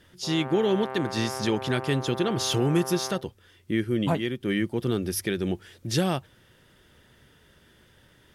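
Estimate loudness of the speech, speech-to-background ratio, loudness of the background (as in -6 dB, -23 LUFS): -27.0 LUFS, 9.5 dB, -36.5 LUFS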